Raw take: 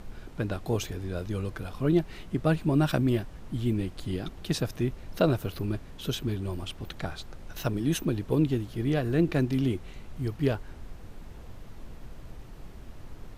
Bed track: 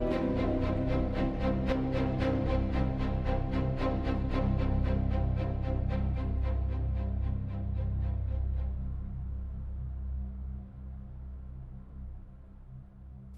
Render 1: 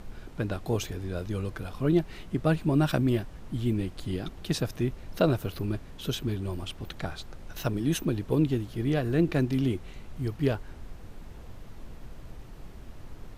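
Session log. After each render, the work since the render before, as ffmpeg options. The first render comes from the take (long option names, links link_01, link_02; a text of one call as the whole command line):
ffmpeg -i in.wav -af anull out.wav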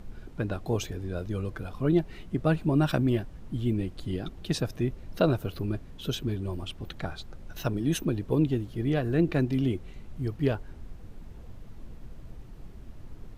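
ffmpeg -i in.wav -af "afftdn=noise_reduction=6:noise_floor=-46" out.wav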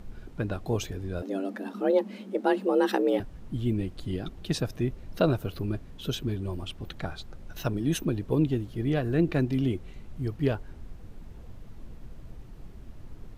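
ffmpeg -i in.wav -filter_complex "[0:a]asettb=1/sr,asplit=3[link_01][link_02][link_03];[link_01]atrim=end=1.224[link_04];[link_02]atrim=start=1.22:end=3.2,asetpts=PTS-STARTPTS,afade=type=in:duration=0.004:curve=qsin,afade=type=out:start_time=1.976:duration=0.004:curve=qsin,afreqshift=190[link_05];[link_03]atrim=start=3.196[link_06];[link_04][link_05]acrossfade=duration=0.004:curve1=hsin:curve2=qsin[link_07];[link_07][link_06]acrossfade=duration=0.004:curve1=qsin:curve2=hsin" out.wav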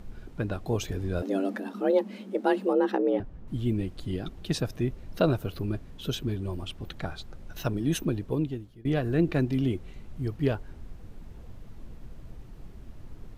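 ffmpeg -i in.wav -filter_complex "[0:a]asettb=1/sr,asplit=3[link_01][link_02][link_03];[link_01]atrim=end=2.734[link_04];[link_02]atrim=start=2.73:end=3.48,asetpts=PTS-STARTPTS,afade=type=in:duration=0.004:curve=qsin,afade=type=out:start_time=0.746:duration=0.004:curve=qsin,lowpass=frequency=1200:poles=1[link_05];[link_03]atrim=start=3.476[link_06];[link_04][link_05]acrossfade=duration=0.004:curve1=hsin:curve2=qsin[link_07];[link_07][link_06]acrossfade=duration=0.004:curve1=qsin:curve2=hsin,asplit=4[link_08][link_09][link_10][link_11];[link_08]atrim=end=0.882[link_12];[link_09]atrim=start=0.878:end=1.602,asetpts=PTS-STARTPTS,volume=3.5dB[link_13];[link_10]atrim=start=1.598:end=8.85,asetpts=PTS-STARTPTS,afade=type=out:start_time=6.512:duration=0.74:silence=0.0630957[link_14];[link_11]atrim=start=8.85,asetpts=PTS-STARTPTS,afade=type=in:duration=0.004:curve=hsin:silence=0.0630957[link_15];[link_12][link_13]acrossfade=duration=0.004:curve1=hsin:curve2=hsin[link_16];[link_14][link_15]concat=n=2:v=0:a=1[link_17];[link_16][link_17]acrossfade=duration=0.004:curve1=hsin:curve2=hsin" out.wav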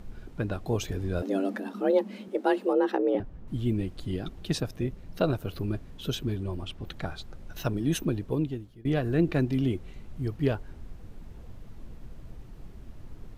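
ffmpeg -i in.wav -filter_complex "[0:a]asettb=1/sr,asplit=3[link_01][link_02][link_03];[link_01]atrim=end=2.284[link_04];[link_02]atrim=start=2.28:end=3.15,asetpts=PTS-STARTPTS,afade=type=in:duration=0.004:curve=qsin,afade=type=out:start_time=0.866:duration=0.004:curve=qsin,highpass=frequency=260:width=0.5412,highpass=frequency=260:width=1.3066[link_05];[link_03]atrim=start=3.146[link_06];[link_04][link_05]acrossfade=duration=0.004:curve1=hsin:curve2=qsin[link_07];[link_07][link_06]acrossfade=duration=0.004:curve1=qsin:curve2=hsin,asettb=1/sr,asplit=3[link_08][link_09][link_10];[link_08]atrim=end=4.604[link_11];[link_09]atrim=start=4.6:end=5.47,asetpts=PTS-STARTPTS,afade=type=in:duration=0.004:curve=qsin,afade=type=out:start_time=0.866:duration=0.004:curve=qsin,tremolo=f=160:d=0.462[link_12];[link_10]atrim=start=5.466[link_13];[link_11][link_12]acrossfade=duration=0.004:curve1=hsin:curve2=qsin[link_14];[link_14][link_13]acrossfade=duration=0.004:curve1=qsin:curve2=hsin,asettb=1/sr,asplit=3[link_15][link_16][link_17];[link_15]atrim=end=6.434[link_18];[link_16]atrim=start=6.43:end=6.87,asetpts=PTS-STARTPTS,afade=type=in:duration=0.004:curve=qsin,afade=type=out:start_time=0.436:duration=0.004:curve=qsin,highshelf=frequency=7200:gain=-7[link_19];[link_17]atrim=start=6.866[link_20];[link_18][link_19]acrossfade=duration=0.004:curve1=hsin:curve2=qsin[link_21];[link_21][link_20]acrossfade=duration=0.004:curve1=qsin:curve2=hsin" out.wav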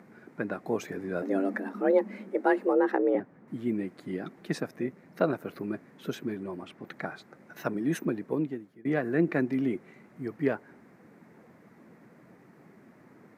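ffmpeg -i in.wav -af "highpass=frequency=180:width=0.5412,highpass=frequency=180:width=1.3066,highshelf=frequency=2500:width_type=q:width=3:gain=-6.5" out.wav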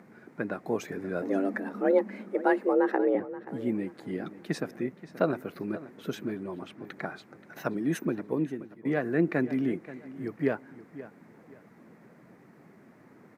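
ffmpeg -i in.wav -filter_complex "[0:a]asplit=2[link_01][link_02];[link_02]adelay=529,lowpass=frequency=4800:poles=1,volume=-15.5dB,asplit=2[link_03][link_04];[link_04]adelay=529,lowpass=frequency=4800:poles=1,volume=0.31,asplit=2[link_05][link_06];[link_06]adelay=529,lowpass=frequency=4800:poles=1,volume=0.31[link_07];[link_01][link_03][link_05][link_07]amix=inputs=4:normalize=0" out.wav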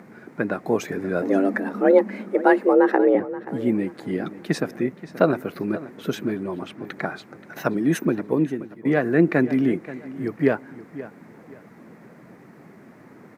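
ffmpeg -i in.wav -af "volume=8dB" out.wav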